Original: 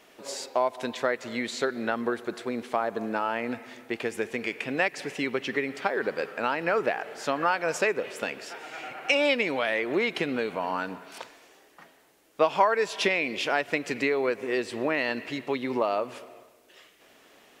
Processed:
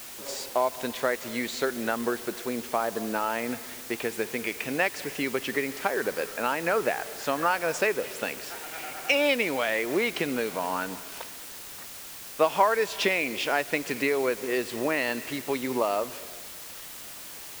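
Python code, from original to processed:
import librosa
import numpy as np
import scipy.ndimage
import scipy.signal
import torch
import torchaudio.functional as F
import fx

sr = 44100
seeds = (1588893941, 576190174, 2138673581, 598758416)

y = fx.dmg_noise_colour(x, sr, seeds[0], colour='white', level_db=-42.0)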